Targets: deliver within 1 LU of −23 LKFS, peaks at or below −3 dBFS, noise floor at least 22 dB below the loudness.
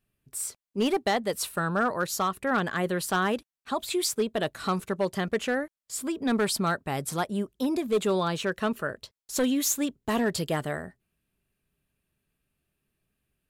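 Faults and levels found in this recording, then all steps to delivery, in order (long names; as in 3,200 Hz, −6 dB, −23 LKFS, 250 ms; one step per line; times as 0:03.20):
share of clipped samples 0.5%; peaks flattened at −18.5 dBFS; integrated loudness −28.5 LKFS; sample peak −18.5 dBFS; target loudness −23.0 LKFS
→ clipped peaks rebuilt −18.5 dBFS
level +5.5 dB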